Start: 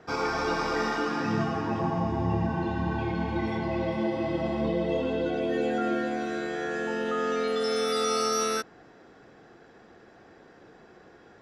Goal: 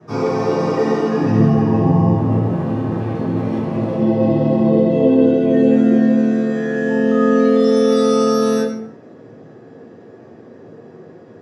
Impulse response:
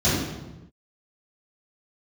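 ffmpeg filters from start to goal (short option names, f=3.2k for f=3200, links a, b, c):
-filter_complex "[0:a]asettb=1/sr,asplit=3[a][b][c];[a]atrim=end=2.174[d];[b]atrim=start=2.17:end=3.99,asetpts=PTS-STARTPTS,afade=t=in:d=0.004:c=qsin,afade=t=out:st=1.816:d=0.004:c=qsin,aeval=exprs='max(val(0),0)':c=same[e];[c]atrim=start=3.986[f];[d][e]acrossfade=d=0.004:c1=hsin:c2=qsin[g];[g][f]acrossfade=d=0.004:c1=qsin:c2=hsin[h];[1:a]atrim=start_sample=2205,asetrate=74970,aresample=44100[i];[h][i]afir=irnorm=-1:irlink=0,volume=-9.5dB"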